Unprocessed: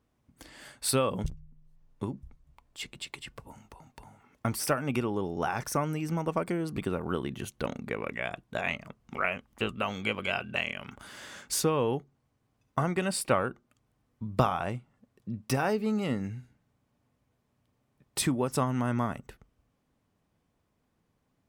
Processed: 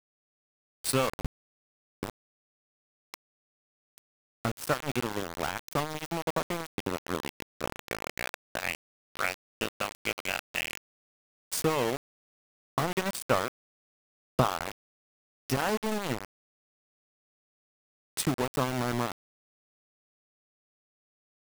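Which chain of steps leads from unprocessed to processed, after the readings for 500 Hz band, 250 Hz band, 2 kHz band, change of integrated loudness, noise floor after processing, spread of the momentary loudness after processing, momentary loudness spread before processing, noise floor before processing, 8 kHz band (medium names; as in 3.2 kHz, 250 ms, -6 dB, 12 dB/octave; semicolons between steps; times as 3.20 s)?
-1.5 dB, -3.5 dB, 0.0 dB, -1.0 dB, under -85 dBFS, 13 LU, 14 LU, -76 dBFS, -1.5 dB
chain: small samples zeroed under -26.5 dBFS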